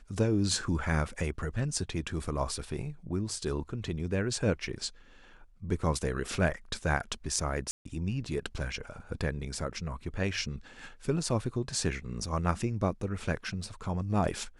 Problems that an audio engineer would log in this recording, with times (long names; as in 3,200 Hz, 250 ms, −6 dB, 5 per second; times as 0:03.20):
0:07.71–0:07.85: drop-out 143 ms